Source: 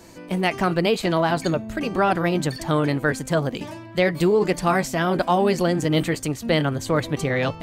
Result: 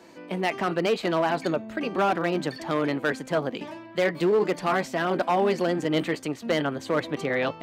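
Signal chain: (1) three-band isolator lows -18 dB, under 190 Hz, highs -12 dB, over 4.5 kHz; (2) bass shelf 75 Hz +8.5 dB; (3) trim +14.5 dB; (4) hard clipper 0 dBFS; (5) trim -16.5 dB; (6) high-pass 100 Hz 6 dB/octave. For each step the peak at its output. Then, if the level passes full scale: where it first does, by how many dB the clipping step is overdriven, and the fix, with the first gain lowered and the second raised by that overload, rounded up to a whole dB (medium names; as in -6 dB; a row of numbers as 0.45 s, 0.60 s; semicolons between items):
-6.0 dBFS, -6.0 dBFS, +8.5 dBFS, 0.0 dBFS, -16.5 dBFS, -14.5 dBFS; step 3, 8.5 dB; step 3 +5.5 dB, step 5 -7.5 dB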